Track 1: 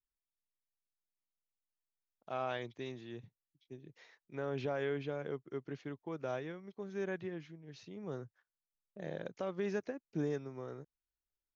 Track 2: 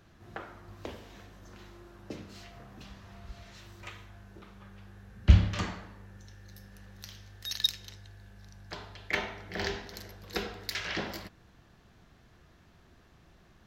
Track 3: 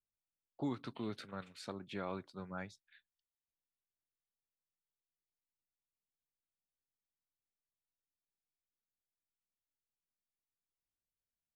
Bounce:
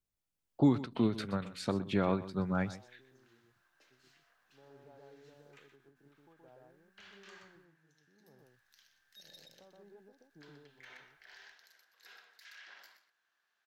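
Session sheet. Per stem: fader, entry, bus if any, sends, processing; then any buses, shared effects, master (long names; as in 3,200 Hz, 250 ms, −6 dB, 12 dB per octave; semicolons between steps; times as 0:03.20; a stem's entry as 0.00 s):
−18.0 dB, 0.20 s, bus A, no send, echo send −6 dB, low-pass filter 1,100 Hz; parametric band 830 Hz +10 dB 0.21 octaves
−11.5 dB, 1.70 s, bus A, no send, echo send −15.5 dB, high-pass filter 1,100 Hz 12 dB per octave; parametric band 1,600 Hz +8.5 dB 0.21 octaves; asymmetric clip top −21 dBFS, bottom −18.5 dBFS
+2.0 dB, 0.00 s, muted 0:07.65–0:08.39, no bus, no send, echo send −15.5 dB, automatic gain control gain up to 5.5 dB; low-shelf EQ 390 Hz +8.5 dB
bus A: 0.0 dB, flanger 1.9 Hz, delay 6.9 ms, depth 6.9 ms, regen +89%; brickwall limiter −45 dBFS, peak gain reduction 11 dB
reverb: not used
echo: single-tap delay 124 ms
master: every ending faded ahead of time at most 160 dB per second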